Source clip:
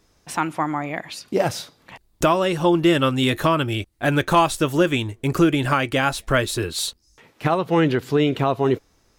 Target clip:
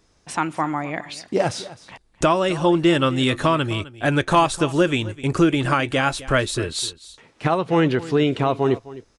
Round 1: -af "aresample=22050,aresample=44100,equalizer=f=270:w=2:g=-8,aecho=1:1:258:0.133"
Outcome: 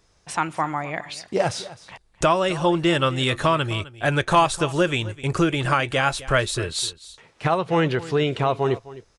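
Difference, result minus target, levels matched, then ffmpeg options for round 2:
250 Hz band -3.0 dB
-af "aresample=22050,aresample=44100,aecho=1:1:258:0.133"

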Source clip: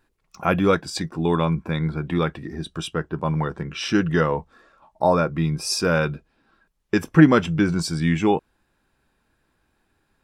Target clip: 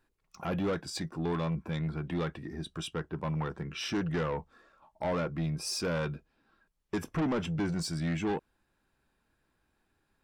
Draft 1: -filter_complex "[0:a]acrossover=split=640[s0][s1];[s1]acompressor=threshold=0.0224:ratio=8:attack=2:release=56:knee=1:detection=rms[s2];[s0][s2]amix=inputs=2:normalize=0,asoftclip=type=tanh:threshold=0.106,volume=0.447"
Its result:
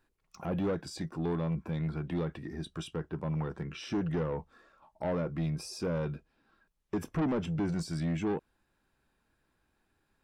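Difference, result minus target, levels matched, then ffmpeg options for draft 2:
compression: peak gain reduction +10.5 dB
-filter_complex "[0:a]acrossover=split=640[s0][s1];[s1]acompressor=threshold=0.0891:ratio=8:attack=2:release=56:knee=1:detection=rms[s2];[s0][s2]amix=inputs=2:normalize=0,asoftclip=type=tanh:threshold=0.106,volume=0.447"

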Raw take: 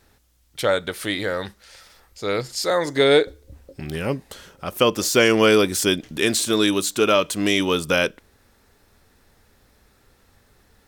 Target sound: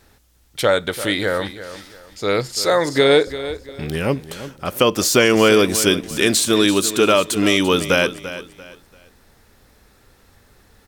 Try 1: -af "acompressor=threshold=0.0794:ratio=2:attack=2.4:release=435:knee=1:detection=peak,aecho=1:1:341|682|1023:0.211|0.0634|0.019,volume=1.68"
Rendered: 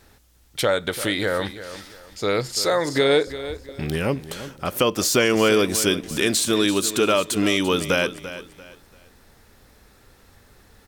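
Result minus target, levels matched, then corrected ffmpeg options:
compression: peak gain reduction +4.5 dB
-af "acompressor=threshold=0.224:ratio=2:attack=2.4:release=435:knee=1:detection=peak,aecho=1:1:341|682|1023:0.211|0.0634|0.019,volume=1.68"

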